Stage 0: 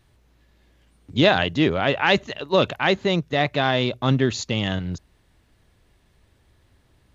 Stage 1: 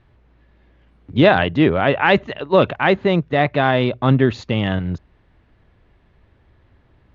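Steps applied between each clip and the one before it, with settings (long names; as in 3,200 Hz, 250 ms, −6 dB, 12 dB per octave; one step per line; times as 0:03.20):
low-pass filter 2,300 Hz 12 dB per octave
level +5 dB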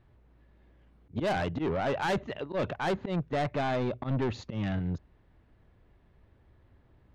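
parametric band 2,800 Hz −4.5 dB 2.5 octaves
volume swells 116 ms
soft clipping −19 dBFS, distortion −7 dB
level −6 dB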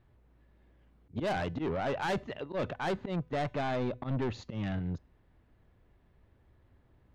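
tuned comb filter 250 Hz, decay 0.45 s, harmonics all, mix 30%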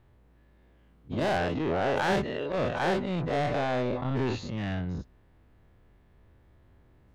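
every bin's largest magnitude spread in time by 120 ms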